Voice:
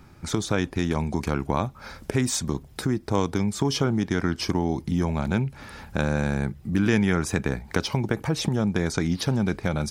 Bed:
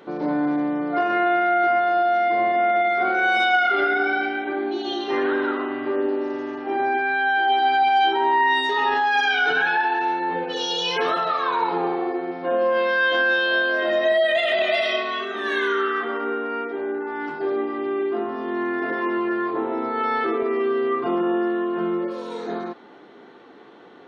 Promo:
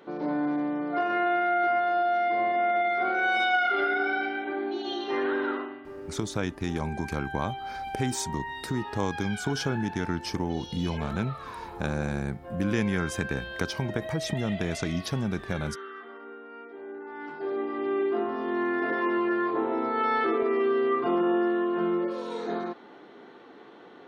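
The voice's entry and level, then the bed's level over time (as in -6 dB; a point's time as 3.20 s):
5.85 s, -5.5 dB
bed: 5.56 s -5.5 dB
5.84 s -18 dB
16.46 s -18 dB
17.93 s -2.5 dB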